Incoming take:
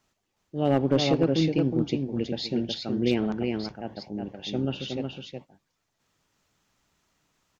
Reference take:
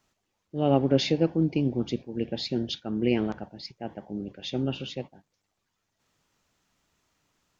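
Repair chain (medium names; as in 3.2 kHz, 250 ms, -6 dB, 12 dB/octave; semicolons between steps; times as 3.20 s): clip repair -12.5 dBFS; inverse comb 367 ms -4.5 dB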